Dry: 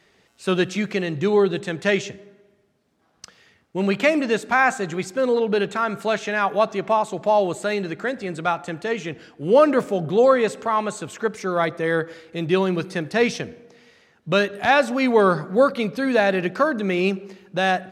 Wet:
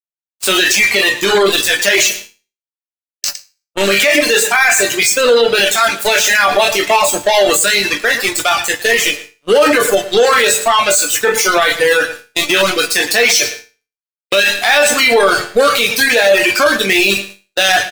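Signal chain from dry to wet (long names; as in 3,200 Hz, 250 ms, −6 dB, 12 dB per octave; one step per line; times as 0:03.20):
peak hold with a decay on every bin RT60 0.33 s
in parallel at −4 dB: soft clipping −21 dBFS, distortion −7 dB
on the sum: high-pass filter 680 Hz 12 dB per octave
parametric band 1,000 Hz −13 dB 1.2 octaves
dead-zone distortion −38.5 dBFS
high-shelf EQ 7,900 Hz +8.5 dB
on a send: repeating echo 111 ms, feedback 20%, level −9 dB
on the sum: noise gate −44 dBFS, range −12 dB
leveller curve on the samples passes 1
resonators tuned to a chord G2 minor, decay 0.3 s
reverb reduction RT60 1.4 s
boost into a limiter +35 dB
level −1 dB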